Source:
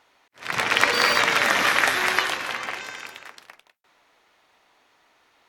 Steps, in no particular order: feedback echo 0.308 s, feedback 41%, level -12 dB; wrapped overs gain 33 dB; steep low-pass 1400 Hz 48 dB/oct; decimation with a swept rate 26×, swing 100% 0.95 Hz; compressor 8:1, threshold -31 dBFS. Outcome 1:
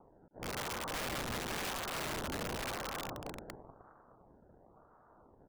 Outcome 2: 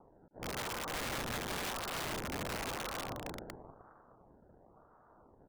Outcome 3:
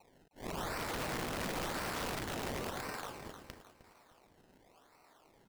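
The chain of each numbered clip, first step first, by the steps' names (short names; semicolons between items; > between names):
compressor > feedback echo > decimation with a swept rate > steep low-pass > wrapped overs; feedback echo > decimation with a swept rate > compressor > steep low-pass > wrapped overs; steep low-pass > decimation with a swept rate > compressor > feedback echo > wrapped overs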